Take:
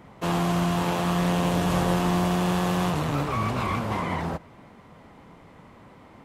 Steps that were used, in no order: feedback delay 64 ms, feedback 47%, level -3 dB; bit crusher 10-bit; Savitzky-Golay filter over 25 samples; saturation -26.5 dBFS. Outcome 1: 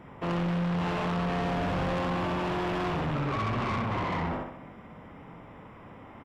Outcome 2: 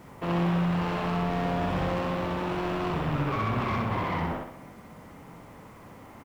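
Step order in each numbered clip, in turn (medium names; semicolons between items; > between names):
feedback delay > bit crusher > Savitzky-Golay filter > saturation; Savitzky-Golay filter > saturation > feedback delay > bit crusher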